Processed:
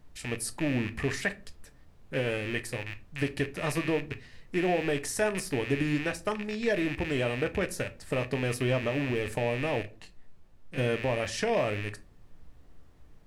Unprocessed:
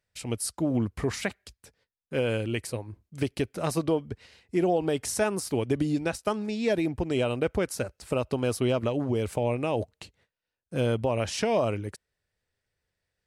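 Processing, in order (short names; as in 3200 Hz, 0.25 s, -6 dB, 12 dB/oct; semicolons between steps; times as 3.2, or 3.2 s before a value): rattling part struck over -39 dBFS, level -24 dBFS; bell 1800 Hz +12 dB 0.2 oct; added noise brown -51 dBFS; on a send at -9 dB: reverb RT60 0.35 s, pre-delay 7 ms; 9.82–10.78 on the sum: detuned doubles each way 17 cents; gain -3.5 dB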